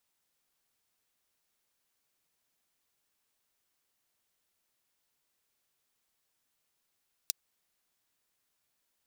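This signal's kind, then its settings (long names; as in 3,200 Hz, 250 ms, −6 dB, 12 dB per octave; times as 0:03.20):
closed synth hi-hat, high-pass 4,400 Hz, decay 0.02 s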